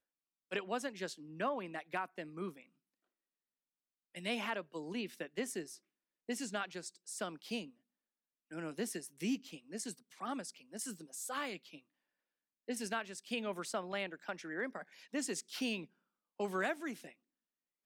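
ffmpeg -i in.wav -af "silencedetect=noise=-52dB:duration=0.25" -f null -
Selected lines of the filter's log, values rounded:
silence_start: 0.00
silence_end: 0.51 | silence_duration: 0.51
silence_start: 2.63
silence_end: 4.15 | silence_duration: 1.52
silence_start: 5.77
silence_end: 6.29 | silence_duration: 0.51
silence_start: 7.70
silence_end: 8.51 | silence_duration: 0.81
silence_start: 11.79
silence_end: 12.68 | silence_duration: 0.89
silence_start: 15.85
silence_end: 16.40 | silence_duration: 0.54
silence_start: 17.13
silence_end: 17.86 | silence_duration: 0.73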